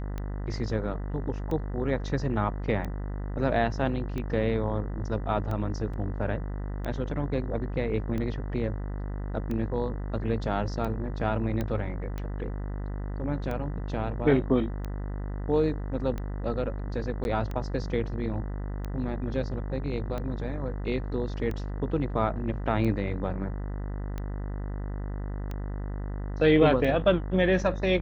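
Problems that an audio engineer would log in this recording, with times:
mains buzz 50 Hz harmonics 40 −33 dBFS
scratch tick 45 rpm −22 dBFS
0:05.93–0:05.94: drop-out 5.4 ms
0:11.61: click −18 dBFS
0:17.24–0:17.25: drop-out 11 ms

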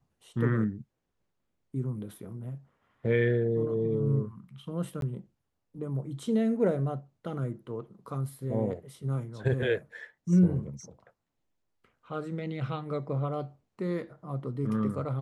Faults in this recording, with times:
0:05.01–0:05.02: drop-out 12 ms

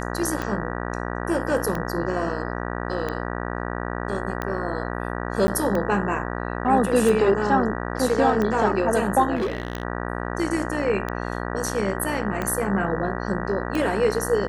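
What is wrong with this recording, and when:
mains buzz 60 Hz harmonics 32 −29 dBFS
scratch tick 45 rpm −14 dBFS
0:05.47–0:05.48: drop-out 10 ms
0:09.35–0:09.83: clipping −21 dBFS

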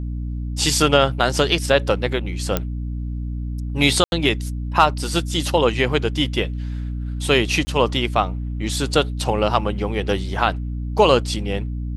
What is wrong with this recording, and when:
mains hum 60 Hz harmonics 5 −26 dBFS
0:02.57: click −5 dBFS
0:04.04–0:04.12: drop-out 81 ms
0:07.65–0:07.67: drop-out 20 ms

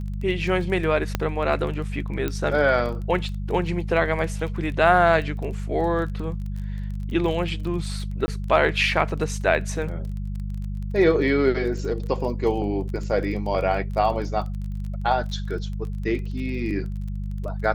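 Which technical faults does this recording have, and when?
surface crackle 22 per second −32 dBFS
mains hum 50 Hz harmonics 4 −29 dBFS
0:01.15: click −8 dBFS
0:02.28: click −13 dBFS
0:08.26–0:08.28: drop-out 20 ms

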